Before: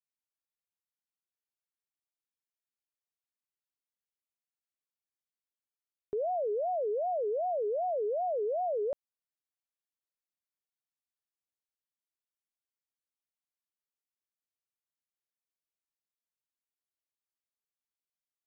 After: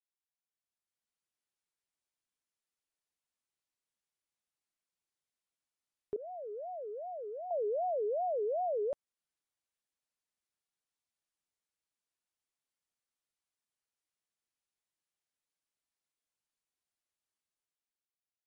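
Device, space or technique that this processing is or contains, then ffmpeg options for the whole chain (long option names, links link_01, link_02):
low-bitrate web radio: -filter_complex "[0:a]asettb=1/sr,asplit=3[link_01][link_02][link_03];[link_01]atrim=end=6.164[link_04];[link_02]atrim=start=6.16:end=7.51,asetpts=PTS-STARTPTS,afade=type=in:duration=0.004:curve=qsin,afade=type=out:start_time=1.346:duration=0.004:curve=qsin,agate=range=-33dB:threshold=-23dB:ratio=3:detection=peak[link_05];[link_03]atrim=start=7.506[link_06];[link_04][link_05]acrossfade=duration=0.004:curve1=hsin:curve2=qsin[link_07];[link_07][link_06]acrossfade=duration=0.004:curve1=qsin:curve2=hsin,dynaudnorm=framelen=100:gausssize=17:maxgain=9.5dB,alimiter=limit=-22.5dB:level=0:latency=1:release=389,volume=-7dB" -ar 44100 -c:a libmp3lame -b:a 48k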